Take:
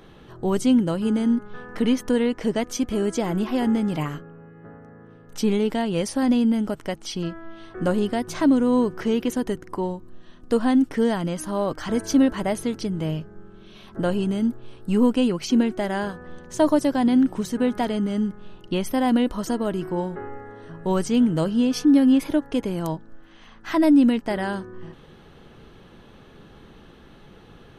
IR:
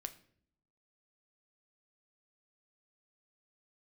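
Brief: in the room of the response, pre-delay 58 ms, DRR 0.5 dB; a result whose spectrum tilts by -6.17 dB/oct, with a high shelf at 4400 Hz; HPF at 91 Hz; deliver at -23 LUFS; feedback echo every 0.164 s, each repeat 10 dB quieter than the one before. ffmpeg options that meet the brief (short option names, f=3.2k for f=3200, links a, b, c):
-filter_complex "[0:a]highpass=91,highshelf=f=4.4k:g=-3.5,aecho=1:1:164|328|492|656:0.316|0.101|0.0324|0.0104,asplit=2[a][b];[1:a]atrim=start_sample=2205,adelay=58[c];[b][c]afir=irnorm=-1:irlink=0,volume=2.5dB[d];[a][d]amix=inputs=2:normalize=0,volume=-3dB"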